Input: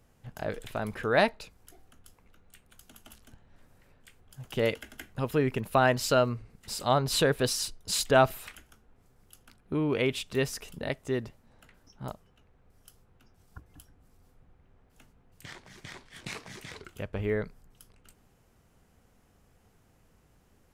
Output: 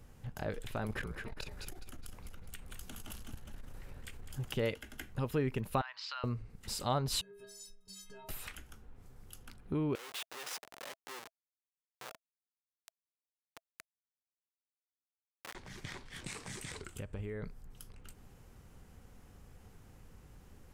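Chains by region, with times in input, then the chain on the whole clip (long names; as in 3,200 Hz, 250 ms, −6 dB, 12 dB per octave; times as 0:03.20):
0:00.84–0:04.53: compressor whose output falls as the input rises −36 dBFS, ratio −0.5 + echo with shifted repeats 206 ms, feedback 44%, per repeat −39 Hz, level −8.5 dB + saturating transformer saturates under 330 Hz
0:05.81–0:06.24: elliptic band-pass filter 980–4,800 Hz, stop band 50 dB + downward compressor 3 to 1, threshold −38 dBFS
0:07.21–0:08.29: downward compressor 8 to 1, threshold −34 dBFS + stiff-string resonator 190 Hz, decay 0.72 s, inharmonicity 0.03
0:09.95–0:15.55: comparator with hysteresis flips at −39 dBFS + high-pass filter 780 Hz
0:16.24–0:17.43: parametric band 8,300 Hz +12.5 dB 0.47 octaves + downward compressor 3 to 1, threshold −39 dBFS
whole clip: low-shelf EQ 120 Hz +7 dB; notch filter 660 Hz, Q 13; downward compressor 1.5 to 1, threshold −54 dBFS; level +4 dB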